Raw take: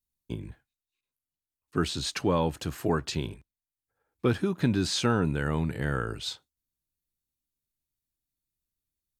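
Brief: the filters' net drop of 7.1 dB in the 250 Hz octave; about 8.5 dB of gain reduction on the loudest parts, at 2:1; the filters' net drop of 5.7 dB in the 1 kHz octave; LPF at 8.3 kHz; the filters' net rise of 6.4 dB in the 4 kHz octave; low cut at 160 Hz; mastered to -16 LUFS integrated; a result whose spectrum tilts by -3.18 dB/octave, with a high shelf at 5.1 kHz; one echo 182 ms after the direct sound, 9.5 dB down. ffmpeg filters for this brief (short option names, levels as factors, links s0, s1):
-af "highpass=160,lowpass=8300,equalizer=f=250:t=o:g=-8,equalizer=f=1000:t=o:g=-8,equalizer=f=4000:t=o:g=4,highshelf=f=5100:g=9,acompressor=threshold=0.0158:ratio=2,aecho=1:1:182:0.335,volume=10"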